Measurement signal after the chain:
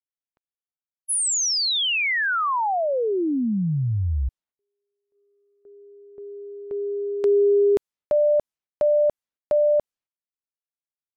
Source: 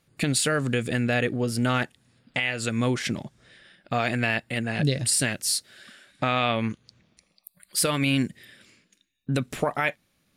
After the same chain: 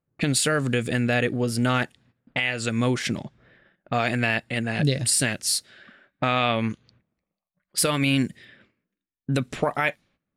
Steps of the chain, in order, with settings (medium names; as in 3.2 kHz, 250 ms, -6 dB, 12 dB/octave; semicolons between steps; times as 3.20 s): level-controlled noise filter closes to 1.2 kHz, open at -23.5 dBFS; gate -58 dBFS, range -14 dB; trim +1.5 dB